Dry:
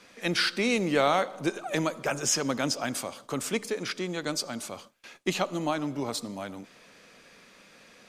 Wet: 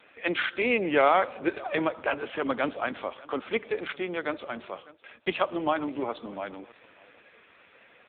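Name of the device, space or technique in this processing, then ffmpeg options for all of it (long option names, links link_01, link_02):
satellite phone: -af "highpass=320,lowpass=3200,highshelf=frequency=3800:gain=5,aecho=1:1:600:0.0841,volume=4dB" -ar 8000 -c:a libopencore_amrnb -b:a 5900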